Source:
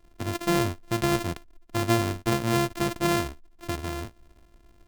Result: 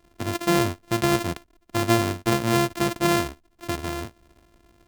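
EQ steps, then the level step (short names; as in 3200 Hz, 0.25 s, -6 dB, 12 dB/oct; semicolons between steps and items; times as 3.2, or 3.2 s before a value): HPF 91 Hz 6 dB/oct; +3.5 dB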